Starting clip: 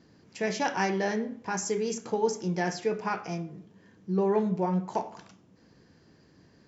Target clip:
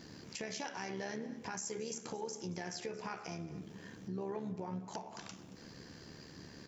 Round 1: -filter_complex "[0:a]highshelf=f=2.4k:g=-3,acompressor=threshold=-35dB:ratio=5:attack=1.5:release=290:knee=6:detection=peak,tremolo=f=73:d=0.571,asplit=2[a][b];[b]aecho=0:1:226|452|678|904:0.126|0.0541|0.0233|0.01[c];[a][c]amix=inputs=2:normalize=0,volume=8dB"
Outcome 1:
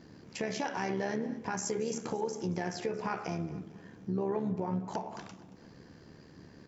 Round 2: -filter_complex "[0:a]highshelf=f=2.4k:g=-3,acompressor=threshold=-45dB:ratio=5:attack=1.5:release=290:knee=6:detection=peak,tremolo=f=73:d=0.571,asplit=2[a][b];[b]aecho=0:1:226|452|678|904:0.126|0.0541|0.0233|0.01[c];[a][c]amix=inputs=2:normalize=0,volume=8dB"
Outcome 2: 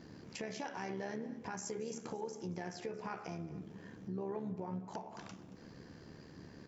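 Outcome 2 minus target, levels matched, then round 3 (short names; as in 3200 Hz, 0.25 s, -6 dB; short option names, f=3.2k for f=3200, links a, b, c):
4000 Hz band -5.5 dB
-filter_complex "[0:a]highshelf=f=2.4k:g=8,acompressor=threshold=-45dB:ratio=5:attack=1.5:release=290:knee=6:detection=peak,tremolo=f=73:d=0.571,asplit=2[a][b];[b]aecho=0:1:226|452|678|904:0.126|0.0541|0.0233|0.01[c];[a][c]amix=inputs=2:normalize=0,volume=8dB"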